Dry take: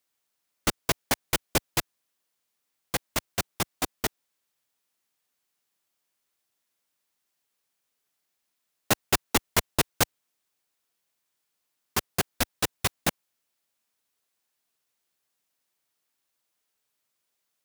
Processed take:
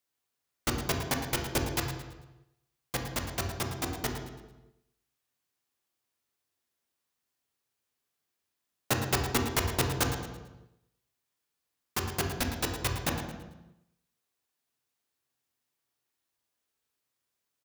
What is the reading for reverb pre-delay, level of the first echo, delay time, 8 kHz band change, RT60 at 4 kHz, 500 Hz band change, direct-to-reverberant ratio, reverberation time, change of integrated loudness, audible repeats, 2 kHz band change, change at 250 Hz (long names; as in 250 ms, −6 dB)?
3 ms, −10.5 dB, 111 ms, −5.0 dB, 0.85 s, −2.0 dB, 1.5 dB, 1.0 s, −3.5 dB, 3, −3.5 dB, −0.5 dB